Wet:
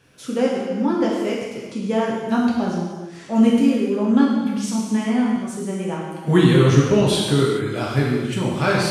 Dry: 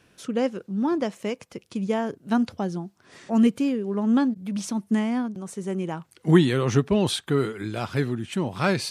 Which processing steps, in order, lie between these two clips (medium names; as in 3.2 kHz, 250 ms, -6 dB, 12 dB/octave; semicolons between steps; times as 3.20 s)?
gated-style reverb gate 460 ms falling, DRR -4.5 dB